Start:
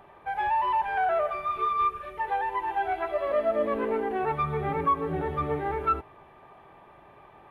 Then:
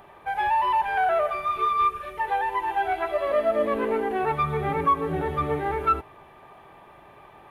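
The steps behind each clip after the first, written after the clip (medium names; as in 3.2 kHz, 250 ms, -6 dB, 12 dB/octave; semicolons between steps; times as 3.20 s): treble shelf 3.6 kHz +8 dB; trim +2.5 dB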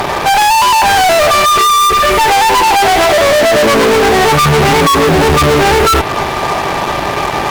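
in parallel at 0 dB: compression, threshold -31 dBFS, peak gain reduction 13.5 dB; on the sum: fuzz box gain 41 dB, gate -48 dBFS; trim +5.5 dB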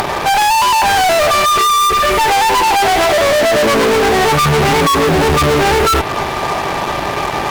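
upward compressor, threshold -13 dBFS; trim -3 dB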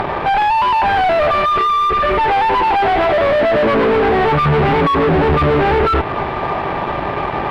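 distance through air 440 m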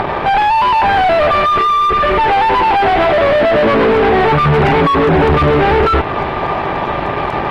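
trim +2.5 dB; AAC 48 kbps 44.1 kHz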